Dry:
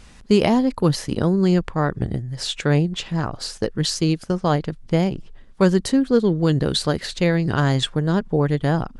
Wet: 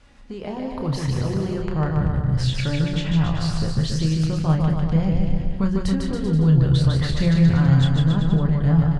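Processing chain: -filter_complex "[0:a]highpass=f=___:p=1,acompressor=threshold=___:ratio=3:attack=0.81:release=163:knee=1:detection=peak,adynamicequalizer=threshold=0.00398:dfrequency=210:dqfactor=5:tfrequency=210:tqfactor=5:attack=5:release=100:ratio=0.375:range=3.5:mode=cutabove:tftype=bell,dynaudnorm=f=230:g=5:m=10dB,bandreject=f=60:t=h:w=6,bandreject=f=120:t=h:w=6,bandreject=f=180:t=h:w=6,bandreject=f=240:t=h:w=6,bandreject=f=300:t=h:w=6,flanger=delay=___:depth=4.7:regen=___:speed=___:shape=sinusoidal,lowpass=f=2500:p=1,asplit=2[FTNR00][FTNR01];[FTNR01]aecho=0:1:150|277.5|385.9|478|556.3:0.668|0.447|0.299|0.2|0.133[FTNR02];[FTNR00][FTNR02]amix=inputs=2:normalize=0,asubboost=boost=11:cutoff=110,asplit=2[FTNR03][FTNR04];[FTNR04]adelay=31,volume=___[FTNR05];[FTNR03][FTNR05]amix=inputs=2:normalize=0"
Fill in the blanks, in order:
45, -30dB, 3.5, 55, 0.38, -7dB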